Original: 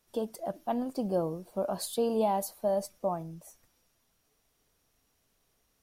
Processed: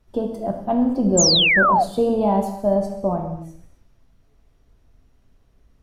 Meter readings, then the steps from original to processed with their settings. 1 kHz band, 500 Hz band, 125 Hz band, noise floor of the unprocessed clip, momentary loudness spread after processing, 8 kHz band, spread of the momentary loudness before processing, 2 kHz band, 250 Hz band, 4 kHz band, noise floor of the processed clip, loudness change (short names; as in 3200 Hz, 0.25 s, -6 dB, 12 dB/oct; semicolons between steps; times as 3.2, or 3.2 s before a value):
+13.0 dB, +9.0 dB, +14.5 dB, -74 dBFS, 14 LU, +20.0 dB, 9 LU, +33.5 dB, +13.5 dB, +26.0 dB, -59 dBFS, +14.0 dB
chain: RIAA curve playback; non-linear reverb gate 0.31 s falling, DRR 2 dB; painted sound fall, 1.17–1.84, 660–7700 Hz -21 dBFS; gain +5 dB